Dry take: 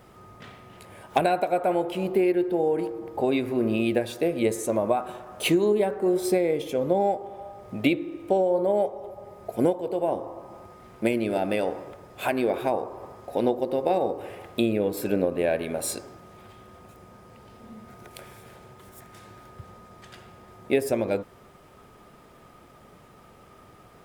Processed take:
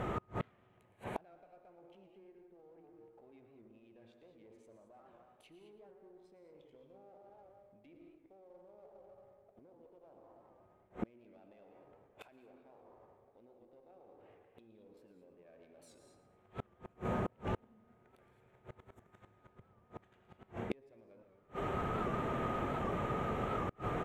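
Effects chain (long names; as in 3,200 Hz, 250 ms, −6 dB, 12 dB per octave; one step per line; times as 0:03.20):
adaptive Wiener filter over 9 samples
treble cut that deepens with the level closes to 2,100 Hz, closed at −18.5 dBFS
reversed playback
downward compressor 10 to 1, threshold −34 dBFS, peak gain reduction 18.5 dB
reversed playback
brickwall limiter −31.5 dBFS, peak gain reduction 10.5 dB
reverb whose tail is shaped and stops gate 240 ms rising, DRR 6.5 dB
in parallel at −3.5 dB: asymmetric clip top −49 dBFS
on the sum: repeating echo 113 ms, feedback 38%, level −12 dB
gate with flip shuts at −35 dBFS, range −35 dB
wow of a warped record 78 rpm, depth 100 cents
level +10.5 dB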